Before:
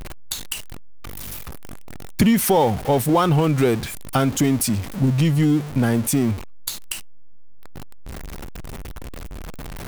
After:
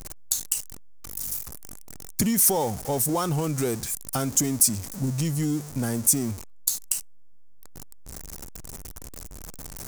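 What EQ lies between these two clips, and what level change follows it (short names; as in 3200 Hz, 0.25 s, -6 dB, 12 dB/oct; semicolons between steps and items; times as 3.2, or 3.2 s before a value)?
resonant high shelf 4600 Hz +12 dB, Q 1.5; -8.5 dB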